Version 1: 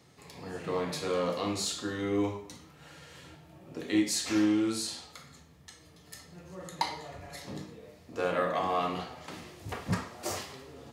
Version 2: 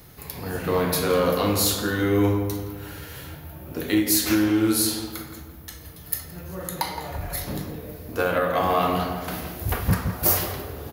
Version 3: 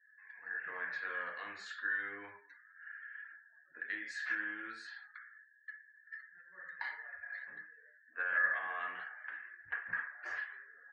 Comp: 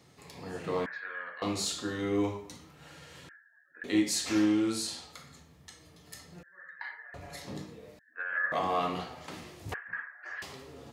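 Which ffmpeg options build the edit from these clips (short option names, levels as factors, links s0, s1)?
-filter_complex "[2:a]asplit=5[s0][s1][s2][s3][s4];[0:a]asplit=6[s5][s6][s7][s8][s9][s10];[s5]atrim=end=0.862[s11];[s0]atrim=start=0.858:end=1.422[s12];[s6]atrim=start=1.418:end=3.292[s13];[s1]atrim=start=3.288:end=3.842[s14];[s7]atrim=start=3.838:end=6.432[s15];[s2]atrim=start=6.428:end=7.142[s16];[s8]atrim=start=7.138:end=7.992[s17];[s3]atrim=start=7.988:end=8.522[s18];[s9]atrim=start=8.518:end=9.742[s19];[s4]atrim=start=9.738:end=10.422[s20];[s10]atrim=start=10.418[s21];[s11][s12]acrossfade=d=0.004:c1=hsin:c2=hsin[s22];[s22][s13]acrossfade=d=0.004:c1=hsin:c2=hsin[s23];[s23][s14]acrossfade=d=0.004:c1=hsin:c2=hsin[s24];[s24][s15]acrossfade=d=0.004:c1=hsin:c2=hsin[s25];[s25][s16]acrossfade=d=0.004:c1=hsin:c2=hsin[s26];[s26][s17]acrossfade=d=0.004:c1=hsin:c2=hsin[s27];[s27][s18]acrossfade=d=0.004:c1=hsin:c2=hsin[s28];[s28][s19]acrossfade=d=0.004:c1=hsin:c2=hsin[s29];[s29][s20]acrossfade=d=0.004:c1=hsin:c2=hsin[s30];[s30][s21]acrossfade=d=0.004:c1=hsin:c2=hsin"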